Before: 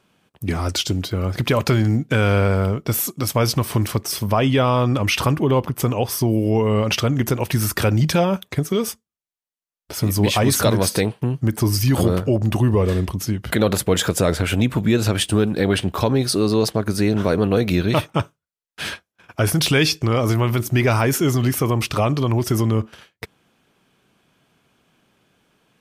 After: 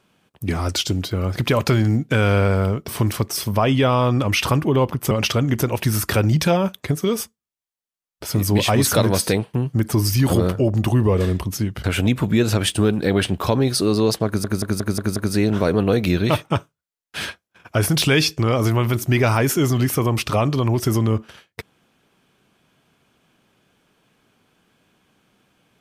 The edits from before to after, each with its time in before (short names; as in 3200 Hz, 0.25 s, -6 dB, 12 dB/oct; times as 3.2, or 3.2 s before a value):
2.88–3.63 cut
5.86–6.79 cut
13.52–14.38 cut
16.8 stutter 0.18 s, 6 plays